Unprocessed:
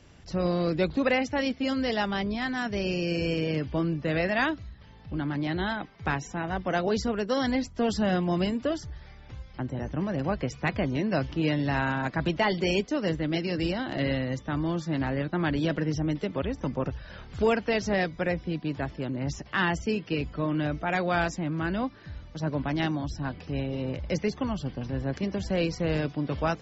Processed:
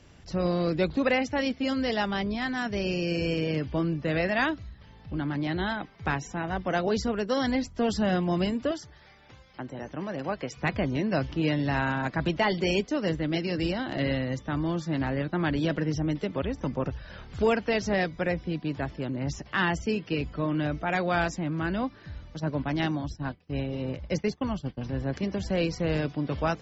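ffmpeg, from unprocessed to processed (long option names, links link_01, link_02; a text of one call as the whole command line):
ffmpeg -i in.wav -filter_complex "[0:a]asettb=1/sr,asplit=3[link_01][link_02][link_03];[link_01]atrim=end=8.714[link_04];[link_02]atrim=start=8.71:end=10.57,asetpts=PTS-STARTPTS,afade=type=in:duration=0.004:curve=qsin,afade=type=out:start_time=1.856:duration=0.004:curve=qsin,highpass=frequency=360:poles=1[link_05];[link_03]atrim=start=10.566[link_06];[link_04][link_05]acrossfade=duration=0.004:curve1=hsin:curve2=qsin[link_07];[link_07][link_06]acrossfade=duration=0.004:curve1=qsin:curve2=hsin,asplit=3[link_08][link_09][link_10];[link_08]afade=type=out:start_time=22.39:duration=0.02[link_11];[link_09]agate=range=-33dB:threshold=-31dB:ratio=3:release=100:detection=peak,afade=type=in:start_time=22.39:duration=0.02,afade=type=out:start_time=24.77:duration=0.02[link_12];[link_10]afade=type=in:start_time=24.77:duration=0.02[link_13];[link_11][link_12][link_13]amix=inputs=3:normalize=0" out.wav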